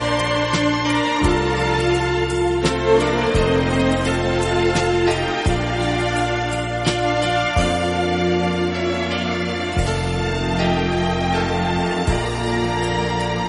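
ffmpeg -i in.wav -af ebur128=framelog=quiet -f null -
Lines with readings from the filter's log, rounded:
Integrated loudness:
  I:         -19.4 LUFS
  Threshold: -29.4 LUFS
Loudness range:
  LRA:         2.3 LU
  Threshold: -39.4 LUFS
  LRA low:   -20.5 LUFS
  LRA high:  -18.2 LUFS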